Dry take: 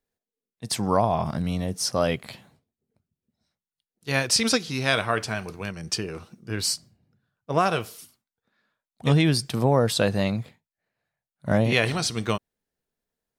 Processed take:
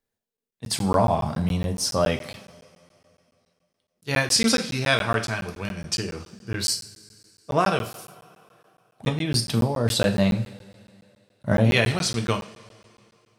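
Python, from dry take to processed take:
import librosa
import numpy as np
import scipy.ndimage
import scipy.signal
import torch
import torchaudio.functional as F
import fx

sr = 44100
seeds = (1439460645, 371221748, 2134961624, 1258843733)

y = fx.over_compress(x, sr, threshold_db=-23.0, ratio=-1.0, at=(9.08, 9.91), fade=0.02)
y = fx.rev_double_slope(y, sr, seeds[0], early_s=0.4, late_s=2.7, knee_db=-20, drr_db=4.5)
y = fx.buffer_crackle(y, sr, first_s=0.37, period_s=0.14, block=512, kind='zero')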